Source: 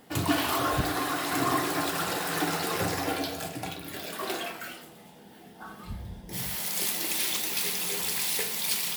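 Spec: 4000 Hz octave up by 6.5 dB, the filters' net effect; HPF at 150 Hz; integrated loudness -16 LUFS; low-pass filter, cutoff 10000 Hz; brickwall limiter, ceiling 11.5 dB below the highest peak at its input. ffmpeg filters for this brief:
-af "highpass=150,lowpass=10k,equalizer=f=4k:t=o:g=8,volume=13.5dB,alimiter=limit=-7dB:level=0:latency=1"

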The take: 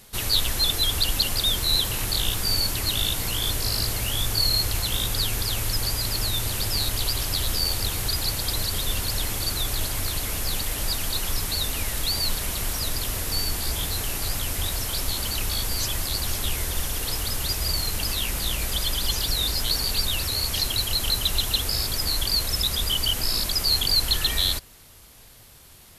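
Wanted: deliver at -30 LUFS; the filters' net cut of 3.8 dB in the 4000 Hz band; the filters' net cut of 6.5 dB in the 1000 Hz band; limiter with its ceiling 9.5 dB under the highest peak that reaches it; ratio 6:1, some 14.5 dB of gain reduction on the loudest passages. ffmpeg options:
-af "equalizer=f=1k:t=o:g=-8.5,equalizer=f=4k:t=o:g=-4,acompressor=threshold=-36dB:ratio=6,volume=12dB,alimiter=limit=-21dB:level=0:latency=1"

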